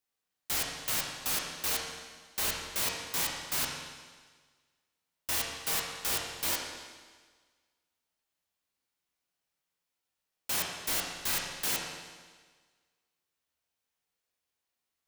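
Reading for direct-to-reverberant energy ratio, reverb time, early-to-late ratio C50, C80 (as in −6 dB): −1.5 dB, 1.5 s, 2.0 dB, 3.5 dB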